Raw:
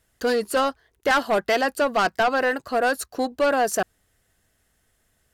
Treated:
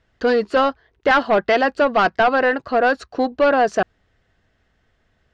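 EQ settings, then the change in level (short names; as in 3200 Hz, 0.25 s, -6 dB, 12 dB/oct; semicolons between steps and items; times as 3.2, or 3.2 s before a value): LPF 6300 Hz 12 dB/oct; air absorption 160 m; +5.5 dB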